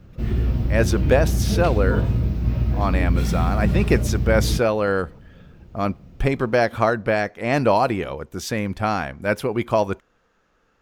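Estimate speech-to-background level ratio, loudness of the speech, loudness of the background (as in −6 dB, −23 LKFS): −0.5 dB, −23.0 LKFS, −22.5 LKFS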